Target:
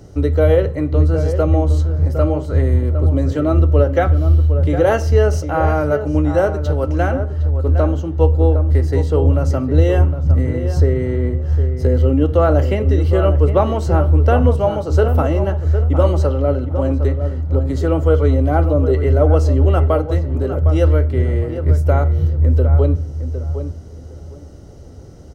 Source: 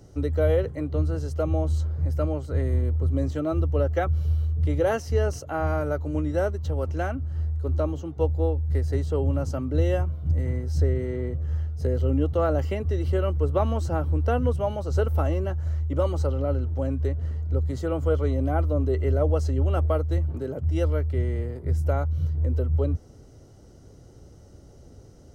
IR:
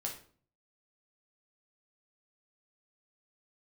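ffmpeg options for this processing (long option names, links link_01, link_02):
-filter_complex "[0:a]asplit=2[link_01][link_02];[link_02]adelay=759,lowpass=frequency=1800:poles=1,volume=-9dB,asplit=2[link_03][link_04];[link_04]adelay=759,lowpass=frequency=1800:poles=1,volume=0.22,asplit=2[link_05][link_06];[link_06]adelay=759,lowpass=frequency=1800:poles=1,volume=0.22[link_07];[link_01][link_03][link_05][link_07]amix=inputs=4:normalize=0,asplit=2[link_08][link_09];[1:a]atrim=start_sample=2205,lowpass=5500[link_10];[link_09][link_10]afir=irnorm=-1:irlink=0,volume=-6.5dB[link_11];[link_08][link_11]amix=inputs=2:normalize=0,volume=6.5dB"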